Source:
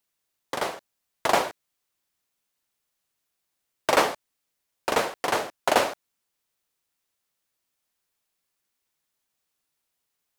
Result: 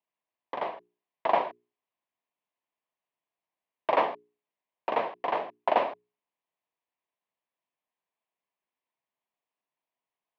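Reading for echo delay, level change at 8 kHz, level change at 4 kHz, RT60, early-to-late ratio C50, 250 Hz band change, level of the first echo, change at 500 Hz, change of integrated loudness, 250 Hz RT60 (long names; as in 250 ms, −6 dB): no echo audible, below −35 dB, −13.0 dB, no reverb audible, no reverb audible, −7.5 dB, no echo audible, −3.0 dB, −4.0 dB, no reverb audible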